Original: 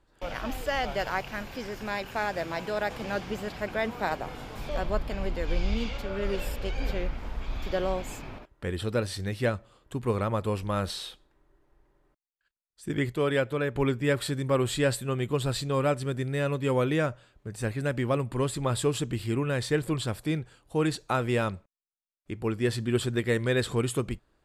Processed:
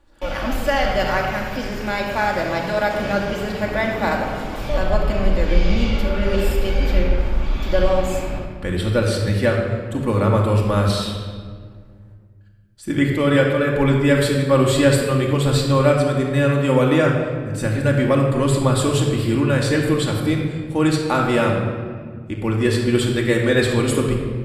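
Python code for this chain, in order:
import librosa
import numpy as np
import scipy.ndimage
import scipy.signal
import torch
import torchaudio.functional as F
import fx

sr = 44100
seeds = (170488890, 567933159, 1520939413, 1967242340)

y = fx.room_shoebox(x, sr, seeds[0], volume_m3=2600.0, walls='mixed', distance_m=2.4)
y = y * librosa.db_to_amplitude(6.0)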